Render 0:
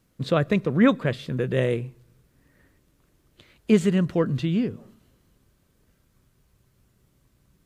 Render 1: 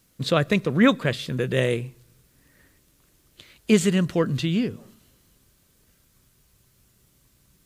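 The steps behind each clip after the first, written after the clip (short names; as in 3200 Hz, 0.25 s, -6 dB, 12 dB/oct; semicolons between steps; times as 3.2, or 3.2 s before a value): high shelf 2500 Hz +11 dB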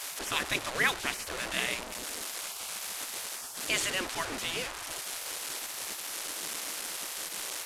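delta modulation 64 kbps, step -27 dBFS; spectral gate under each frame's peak -15 dB weak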